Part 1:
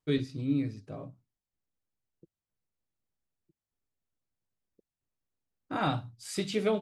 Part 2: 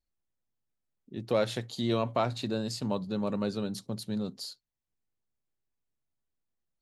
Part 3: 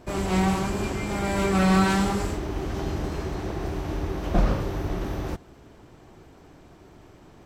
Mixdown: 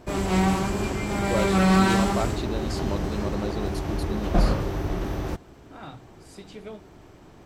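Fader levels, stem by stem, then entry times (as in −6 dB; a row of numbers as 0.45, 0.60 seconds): −12.0, −0.5, +1.0 decibels; 0.00, 0.00, 0.00 seconds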